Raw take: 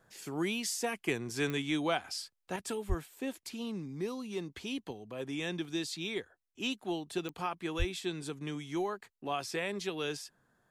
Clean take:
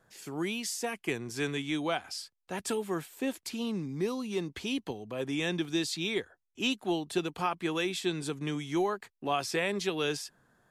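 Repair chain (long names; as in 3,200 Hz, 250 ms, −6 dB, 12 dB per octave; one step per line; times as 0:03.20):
click removal
0:02.56: level correction +5 dB
0:02.88–0:03.00: high-pass filter 140 Hz 24 dB per octave
0:07.78–0:07.90: high-pass filter 140 Hz 24 dB per octave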